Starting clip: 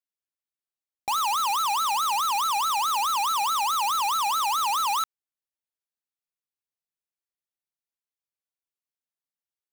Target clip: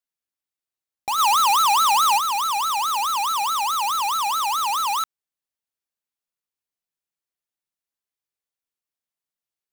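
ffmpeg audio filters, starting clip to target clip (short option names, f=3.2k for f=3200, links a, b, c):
-filter_complex "[0:a]asplit=3[a][b][c];[a]afade=t=out:st=1.18:d=0.02[d];[b]acontrast=35,afade=t=in:st=1.18:d=0.02,afade=t=out:st=2.17:d=0.02[e];[c]afade=t=in:st=2.17:d=0.02[f];[d][e][f]amix=inputs=3:normalize=0,volume=2dB"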